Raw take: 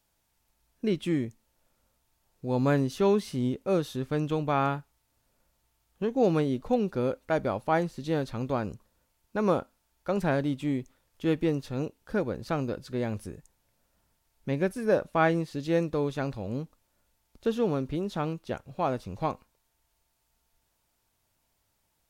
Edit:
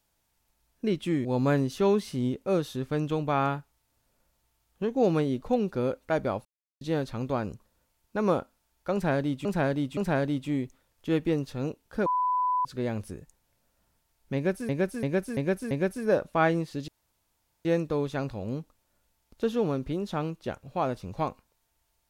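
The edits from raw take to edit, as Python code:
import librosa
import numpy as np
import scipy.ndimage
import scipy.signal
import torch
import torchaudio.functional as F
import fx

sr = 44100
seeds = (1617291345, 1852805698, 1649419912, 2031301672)

y = fx.edit(x, sr, fx.cut(start_s=1.25, length_s=1.2),
    fx.silence(start_s=7.65, length_s=0.36),
    fx.repeat(start_s=10.13, length_s=0.52, count=3),
    fx.bleep(start_s=12.22, length_s=0.59, hz=999.0, db=-23.0),
    fx.repeat(start_s=14.51, length_s=0.34, count=5),
    fx.insert_room_tone(at_s=15.68, length_s=0.77), tone=tone)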